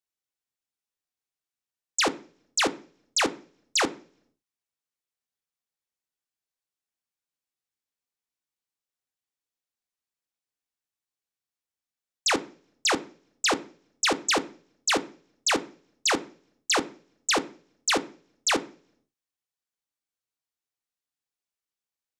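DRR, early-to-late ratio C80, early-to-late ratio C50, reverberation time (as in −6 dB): 7.5 dB, 23.5 dB, 19.0 dB, 0.45 s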